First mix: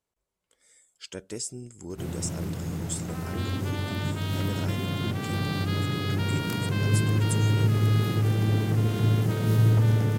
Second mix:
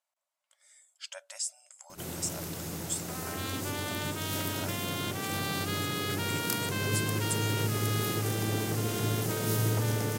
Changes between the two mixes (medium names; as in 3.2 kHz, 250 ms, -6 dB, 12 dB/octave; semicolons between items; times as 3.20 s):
speech: add brick-wall FIR high-pass 540 Hz; first sound: add tone controls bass -10 dB, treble +10 dB